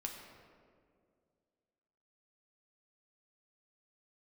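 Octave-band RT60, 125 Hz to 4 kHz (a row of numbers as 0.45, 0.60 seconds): 2.5, 2.5, 2.5, 1.9, 1.5, 1.1 seconds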